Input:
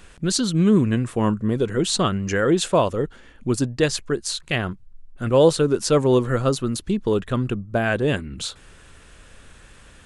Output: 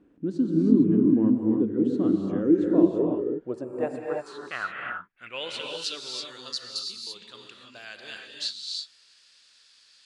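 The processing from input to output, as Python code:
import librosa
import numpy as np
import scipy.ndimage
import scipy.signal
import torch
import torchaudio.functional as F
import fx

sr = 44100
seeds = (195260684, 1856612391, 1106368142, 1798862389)

y = fx.filter_sweep_bandpass(x, sr, from_hz=290.0, to_hz=4600.0, start_s=2.74, end_s=6.09, q=6.0)
y = fx.rev_gated(y, sr, seeds[0], gate_ms=360, shape='rising', drr_db=0.0)
y = fx.spec_box(y, sr, start_s=3.62, length_s=0.65, low_hz=2800.0, high_hz=7000.0, gain_db=-12)
y = y * librosa.db_to_amplitude(5.5)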